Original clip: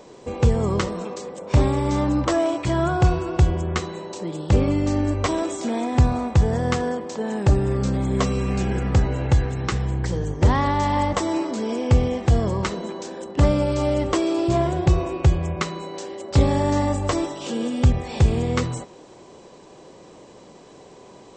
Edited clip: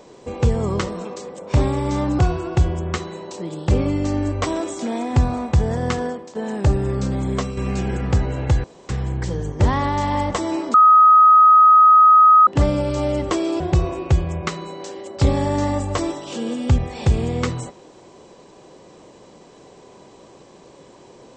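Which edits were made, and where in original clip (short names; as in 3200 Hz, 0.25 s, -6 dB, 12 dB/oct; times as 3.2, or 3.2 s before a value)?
2.19–3.01 cut
6.88–7.17 fade out, to -11.5 dB
8.11–8.39 fade out, to -7.5 dB
9.46–9.71 room tone
11.56–13.29 bleep 1260 Hz -7 dBFS
14.42–14.74 cut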